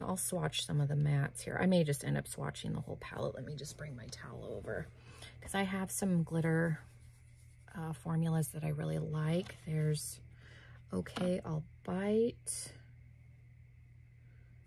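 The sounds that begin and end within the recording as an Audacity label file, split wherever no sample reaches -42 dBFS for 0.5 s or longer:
7.710000	10.140000	sound
10.930000	12.690000	sound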